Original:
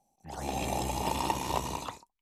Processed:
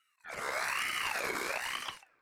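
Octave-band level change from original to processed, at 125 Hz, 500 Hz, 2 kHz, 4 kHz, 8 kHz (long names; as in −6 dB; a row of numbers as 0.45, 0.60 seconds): −21.0, −5.0, +10.0, +2.0, −3.0 decibels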